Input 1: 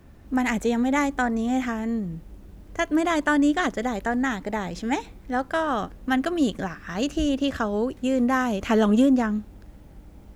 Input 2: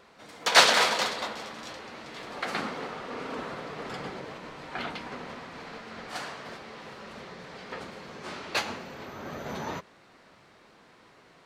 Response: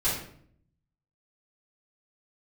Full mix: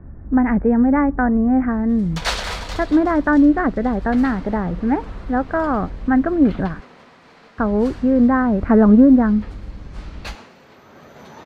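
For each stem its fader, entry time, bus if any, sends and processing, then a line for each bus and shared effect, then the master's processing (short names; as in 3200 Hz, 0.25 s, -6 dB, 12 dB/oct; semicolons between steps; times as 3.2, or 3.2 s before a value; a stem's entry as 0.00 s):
+3.0 dB, 0.00 s, muted 6.81–7.58, no send, steep low-pass 1800 Hz 36 dB/oct; low shelf 250 Hz +11 dB
-5.5 dB, 1.70 s, no send, dry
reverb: off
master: dry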